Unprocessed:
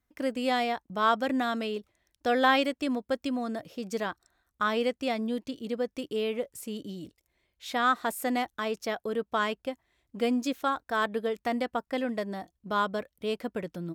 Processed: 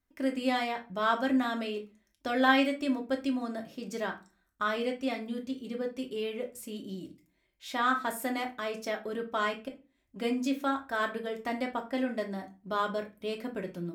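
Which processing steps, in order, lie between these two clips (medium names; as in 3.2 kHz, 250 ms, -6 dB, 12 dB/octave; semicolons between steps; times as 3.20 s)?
4.76–6.42 s: comb of notches 320 Hz; 9.68–10.16 s: compression 5:1, threshold -50 dBFS, peak gain reduction 18.5 dB; reverberation RT60 0.30 s, pre-delay 3 ms, DRR 2 dB; trim -4 dB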